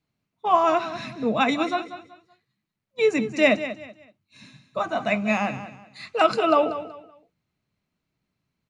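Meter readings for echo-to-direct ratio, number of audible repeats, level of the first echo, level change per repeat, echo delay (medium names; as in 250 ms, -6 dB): -12.0 dB, 3, -12.5 dB, -11.0 dB, 189 ms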